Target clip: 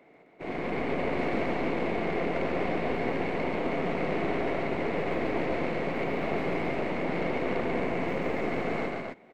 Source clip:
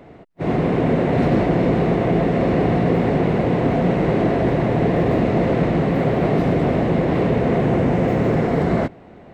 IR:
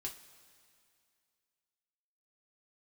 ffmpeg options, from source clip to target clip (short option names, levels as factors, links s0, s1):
-af "highpass=260,equalizer=f=2200:w=6.5:g=11.5,aeval=exprs='(tanh(5.62*val(0)+0.8)-tanh(0.8))/5.62':c=same,aecho=1:1:139.9|262.4:0.708|0.631,volume=0.398"